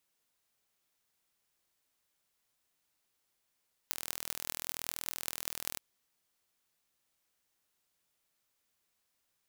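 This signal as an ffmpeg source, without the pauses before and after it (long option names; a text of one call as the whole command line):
ffmpeg -f lavfi -i "aevalsrc='0.531*eq(mod(n,1081),0)*(0.5+0.5*eq(mod(n,8648),0))':duration=1.88:sample_rate=44100" out.wav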